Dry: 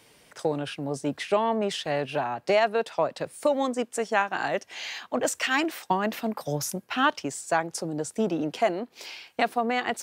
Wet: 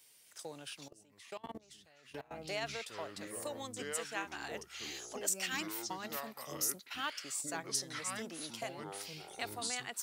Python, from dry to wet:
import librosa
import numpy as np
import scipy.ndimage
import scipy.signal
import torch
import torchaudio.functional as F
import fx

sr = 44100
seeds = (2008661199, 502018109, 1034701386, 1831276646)

y = fx.echo_pitch(x, sr, ms=269, semitones=-6, count=2, db_per_echo=-3.0)
y = fx.level_steps(y, sr, step_db=23, at=(0.88, 2.31))
y = librosa.effects.preemphasis(y, coef=0.9, zi=[0.0])
y = y * 10.0 ** (-2.0 / 20.0)